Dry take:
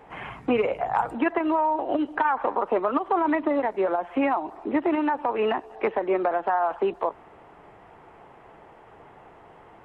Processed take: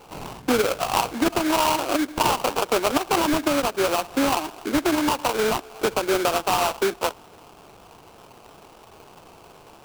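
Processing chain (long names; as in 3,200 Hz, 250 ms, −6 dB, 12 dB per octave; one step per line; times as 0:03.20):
sample-rate reduction 1,900 Hz, jitter 20%
level +2 dB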